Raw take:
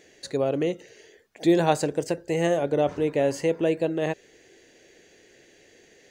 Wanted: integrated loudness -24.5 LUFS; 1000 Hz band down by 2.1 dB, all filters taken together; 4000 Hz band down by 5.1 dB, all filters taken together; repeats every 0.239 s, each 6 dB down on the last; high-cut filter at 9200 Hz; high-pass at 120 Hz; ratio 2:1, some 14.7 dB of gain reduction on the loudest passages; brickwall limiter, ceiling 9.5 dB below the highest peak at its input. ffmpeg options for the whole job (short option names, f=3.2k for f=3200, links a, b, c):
-af "highpass=120,lowpass=9.2k,equalizer=f=1k:t=o:g=-3,equalizer=f=4k:t=o:g=-6.5,acompressor=threshold=-43dB:ratio=2,alimiter=level_in=8.5dB:limit=-24dB:level=0:latency=1,volume=-8.5dB,aecho=1:1:239|478|717|956|1195|1434:0.501|0.251|0.125|0.0626|0.0313|0.0157,volume=17.5dB"